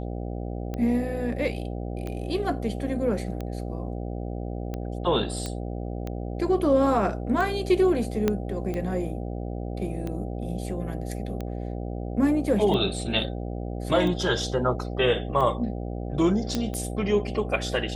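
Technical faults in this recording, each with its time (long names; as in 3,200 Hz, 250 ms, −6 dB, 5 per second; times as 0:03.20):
mains buzz 60 Hz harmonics 13 −32 dBFS
scratch tick 45 rpm −20 dBFS
0:05.46: click −17 dBFS
0:08.28: click −10 dBFS
0:16.55: click −12 dBFS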